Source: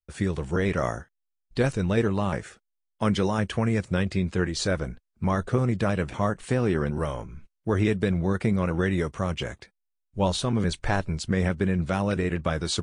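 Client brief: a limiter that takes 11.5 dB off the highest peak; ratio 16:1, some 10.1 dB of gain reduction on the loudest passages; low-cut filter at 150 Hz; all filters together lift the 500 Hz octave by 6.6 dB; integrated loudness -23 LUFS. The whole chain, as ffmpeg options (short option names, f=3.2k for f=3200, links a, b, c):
-af "highpass=150,equalizer=f=500:t=o:g=8,acompressor=threshold=-24dB:ratio=16,volume=11dB,alimiter=limit=-11.5dB:level=0:latency=1"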